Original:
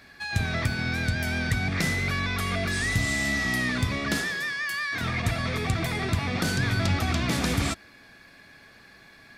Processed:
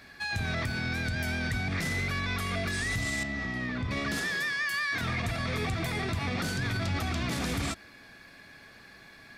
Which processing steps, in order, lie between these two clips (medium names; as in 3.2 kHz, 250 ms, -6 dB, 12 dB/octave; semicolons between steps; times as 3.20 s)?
peak limiter -22.5 dBFS, peak gain reduction 10 dB; 3.23–3.91 s: tape spacing loss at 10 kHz 22 dB